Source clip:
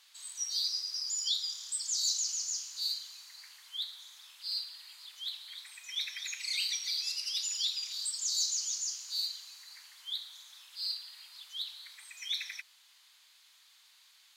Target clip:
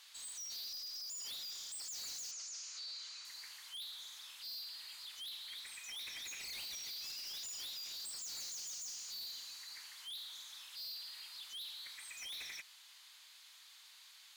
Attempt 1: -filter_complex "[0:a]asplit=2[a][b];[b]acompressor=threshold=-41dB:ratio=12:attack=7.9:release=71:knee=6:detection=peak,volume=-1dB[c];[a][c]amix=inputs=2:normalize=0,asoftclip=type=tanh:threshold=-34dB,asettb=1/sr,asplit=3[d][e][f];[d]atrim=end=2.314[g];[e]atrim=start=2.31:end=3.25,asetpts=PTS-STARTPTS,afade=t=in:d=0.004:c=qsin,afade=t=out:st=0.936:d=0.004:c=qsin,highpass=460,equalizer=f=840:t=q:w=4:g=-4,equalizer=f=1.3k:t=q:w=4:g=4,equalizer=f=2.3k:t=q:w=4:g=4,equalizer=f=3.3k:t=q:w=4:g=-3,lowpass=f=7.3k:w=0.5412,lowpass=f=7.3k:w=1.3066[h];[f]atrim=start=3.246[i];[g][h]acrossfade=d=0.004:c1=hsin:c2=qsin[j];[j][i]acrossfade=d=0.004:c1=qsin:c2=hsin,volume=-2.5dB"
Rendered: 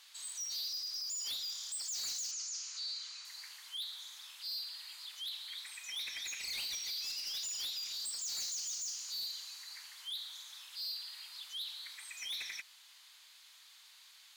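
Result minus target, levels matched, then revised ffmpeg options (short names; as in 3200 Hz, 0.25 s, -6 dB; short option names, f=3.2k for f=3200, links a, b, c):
soft clip: distortion -4 dB
-filter_complex "[0:a]asplit=2[a][b];[b]acompressor=threshold=-41dB:ratio=12:attack=7.9:release=71:knee=6:detection=peak,volume=-1dB[c];[a][c]amix=inputs=2:normalize=0,asoftclip=type=tanh:threshold=-41.5dB,asettb=1/sr,asplit=3[d][e][f];[d]atrim=end=2.314[g];[e]atrim=start=2.31:end=3.25,asetpts=PTS-STARTPTS,afade=t=in:d=0.004:c=qsin,afade=t=out:st=0.936:d=0.004:c=qsin,highpass=460,equalizer=f=840:t=q:w=4:g=-4,equalizer=f=1.3k:t=q:w=4:g=4,equalizer=f=2.3k:t=q:w=4:g=4,equalizer=f=3.3k:t=q:w=4:g=-3,lowpass=f=7.3k:w=0.5412,lowpass=f=7.3k:w=1.3066[h];[f]atrim=start=3.246[i];[g][h]acrossfade=d=0.004:c1=hsin:c2=qsin[j];[j][i]acrossfade=d=0.004:c1=qsin:c2=hsin,volume=-2.5dB"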